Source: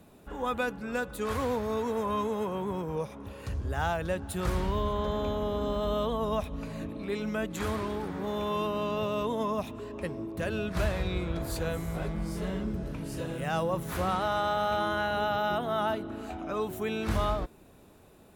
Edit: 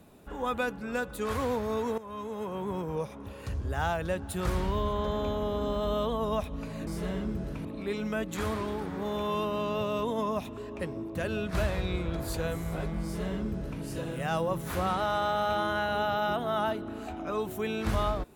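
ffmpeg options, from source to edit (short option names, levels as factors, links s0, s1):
-filter_complex "[0:a]asplit=4[s0][s1][s2][s3];[s0]atrim=end=1.98,asetpts=PTS-STARTPTS,afade=t=out:st=1.976:d=0.004:c=hsin:silence=0.149624[s4];[s1]atrim=start=1.98:end=6.872,asetpts=PTS-STARTPTS,afade=t=in:d=0.78:silence=0.149624[s5];[s2]atrim=start=12.258:end=13.042[s6];[s3]atrim=start=6.868[s7];[s4][s5]concat=n=2:v=0:a=1[s8];[s8][s6]acrossfade=d=0.004:c1=hsin:c2=hsin[s9];[s9][s7]acrossfade=d=0.004:c1=hsin:c2=hsin"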